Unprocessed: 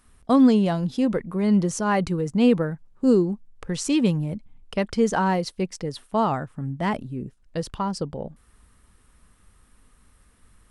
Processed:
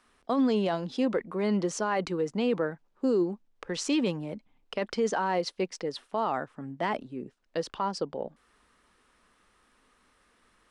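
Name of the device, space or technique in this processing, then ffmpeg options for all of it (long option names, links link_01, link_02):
DJ mixer with the lows and highs turned down: -filter_complex "[0:a]acrossover=split=260 6700:gain=0.112 1 0.141[link_01][link_02][link_03];[link_01][link_02][link_03]amix=inputs=3:normalize=0,alimiter=limit=-18.5dB:level=0:latency=1:release=13"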